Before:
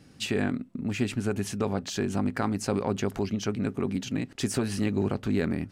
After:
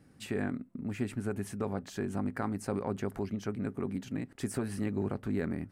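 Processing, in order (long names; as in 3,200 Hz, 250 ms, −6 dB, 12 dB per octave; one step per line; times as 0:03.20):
flat-topped bell 4,200 Hz −8 dB
level −6 dB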